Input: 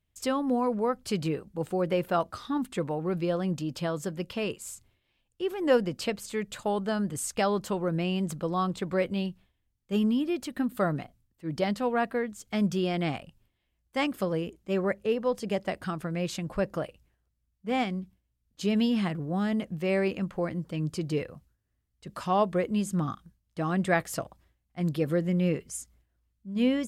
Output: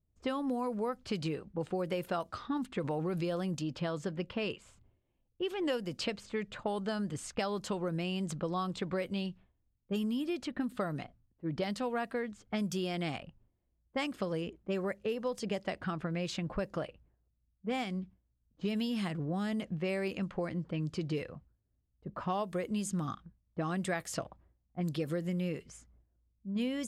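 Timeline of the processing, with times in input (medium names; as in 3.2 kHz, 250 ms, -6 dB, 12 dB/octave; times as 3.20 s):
2.84–3.55 s: level flattener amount 50%
4.51–5.80 s: peaking EQ 3.1 kHz +5.5 dB
whole clip: level-controlled noise filter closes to 580 Hz, open at -23 dBFS; treble shelf 4.1 kHz +10 dB; compression 6:1, threshold -31 dBFS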